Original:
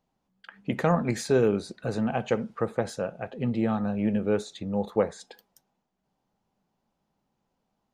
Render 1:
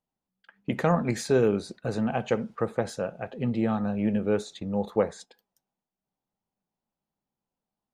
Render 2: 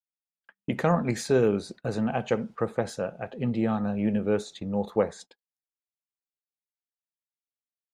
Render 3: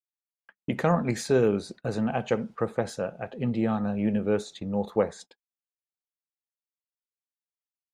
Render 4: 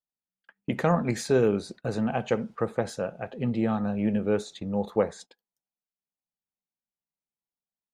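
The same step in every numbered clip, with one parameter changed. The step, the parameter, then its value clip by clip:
gate, range: -12, -42, -59, -28 dB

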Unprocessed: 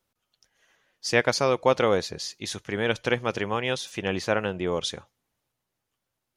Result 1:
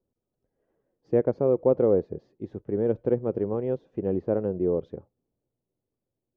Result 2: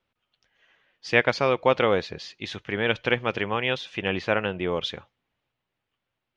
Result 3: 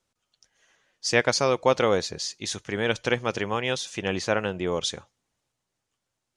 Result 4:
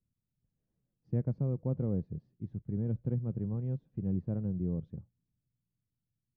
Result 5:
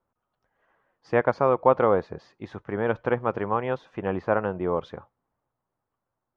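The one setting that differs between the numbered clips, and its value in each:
synth low-pass, frequency: 420, 2900, 7800, 160, 1100 Hz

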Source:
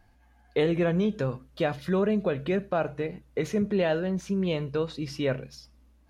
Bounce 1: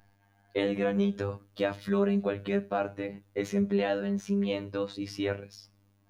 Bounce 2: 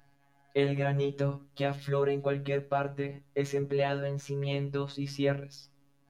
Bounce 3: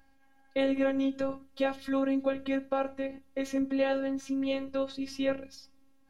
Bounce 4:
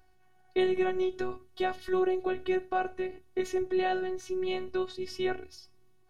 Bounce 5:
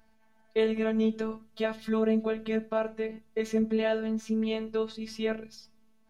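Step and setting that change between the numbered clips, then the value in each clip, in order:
robotiser, frequency: 100, 140, 270, 370, 220 Hz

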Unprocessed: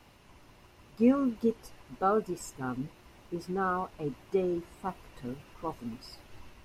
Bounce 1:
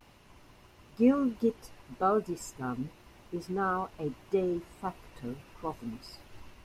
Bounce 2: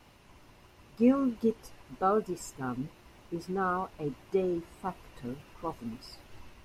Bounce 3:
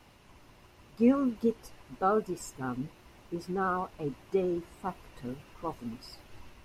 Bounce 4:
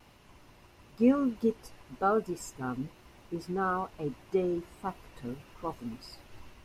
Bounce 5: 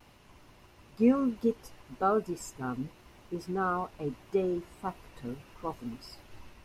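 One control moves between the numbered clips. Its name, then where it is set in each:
vibrato, rate: 0.32, 3.2, 11, 1.1, 0.72 Hz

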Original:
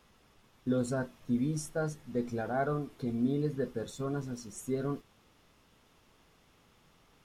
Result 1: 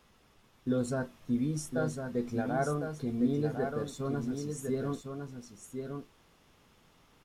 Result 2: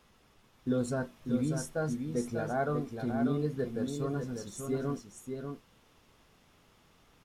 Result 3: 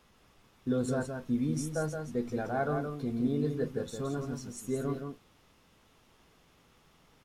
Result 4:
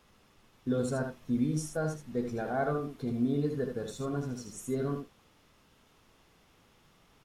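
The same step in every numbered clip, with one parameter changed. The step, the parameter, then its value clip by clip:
echo, time: 1055, 593, 170, 77 ms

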